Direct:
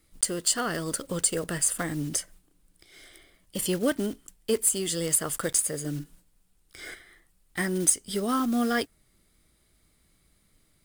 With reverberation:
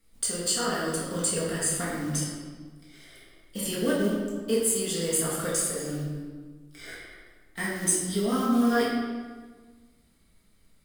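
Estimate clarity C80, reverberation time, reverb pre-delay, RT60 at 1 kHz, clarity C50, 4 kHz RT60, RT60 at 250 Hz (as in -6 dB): 3.0 dB, 1.5 s, 4 ms, 1.5 s, 0.0 dB, 1.0 s, 1.8 s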